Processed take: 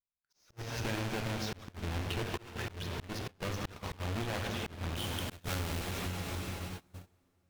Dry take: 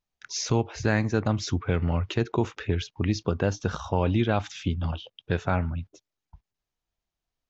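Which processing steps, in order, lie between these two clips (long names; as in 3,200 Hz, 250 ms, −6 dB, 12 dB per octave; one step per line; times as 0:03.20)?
each half-wave held at its own peak
dense smooth reverb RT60 4.2 s, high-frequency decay 0.95×, DRR 5.5 dB
asymmetric clip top −31 dBFS
volume swells 502 ms
noise gate −40 dBFS, range −23 dB
high-shelf EQ 5,000 Hz −3.5 dB, from 0:04.96 +7 dB
downward compressor 6 to 1, threshold −34 dBFS, peak gain reduction 11.5 dB
dynamic equaliser 2,900 Hz, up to +5 dB, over −58 dBFS, Q 0.85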